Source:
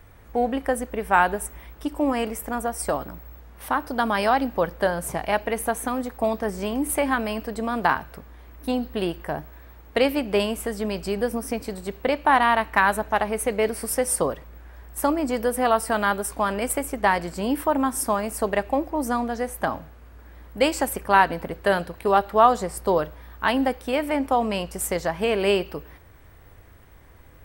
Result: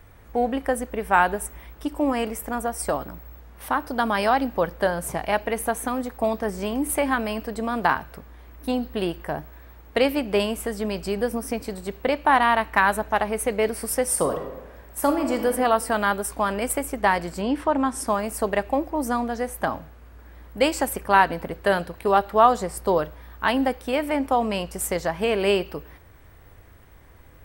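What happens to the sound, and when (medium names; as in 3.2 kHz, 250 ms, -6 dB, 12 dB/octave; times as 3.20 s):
14.08–15.47 s: reverb throw, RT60 1.1 s, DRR 4.5 dB
17.41–18.06 s: low-pass 4.7 kHz -> 8.6 kHz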